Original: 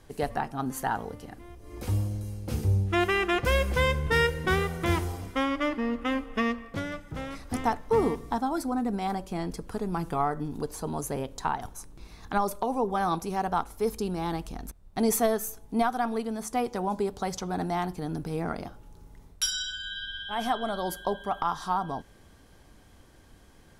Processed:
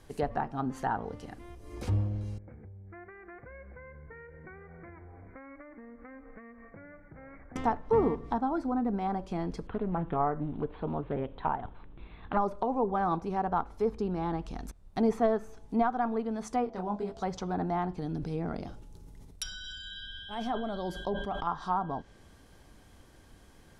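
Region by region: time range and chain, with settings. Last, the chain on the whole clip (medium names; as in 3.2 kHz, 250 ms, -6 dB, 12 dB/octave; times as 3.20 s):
2.38–7.56 s: compression 16:1, threshold -38 dBFS + rippled Chebyshev low-pass 2.3 kHz, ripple 6 dB + peaking EQ 570 Hz -3 dB 1.9 oct
9.67–12.37 s: steep low-pass 3.6 kHz 72 dB/octave + loudspeaker Doppler distortion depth 0.27 ms
16.64–17.22 s: whistle 670 Hz -46 dBFS + detune thickener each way 34 cents
18.01–21.47 s: peaking EQ 1.2 kHz -7 dB 2.1 oct + decay stretcher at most 45 dB/s
whole clip: low-pass that closes with the level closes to 2.1 kHz, closed at -26 dBFS; dynamic bell 2.4 kHz, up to -4 dB, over -46 dBFS, Q 0.94; trim -1 dB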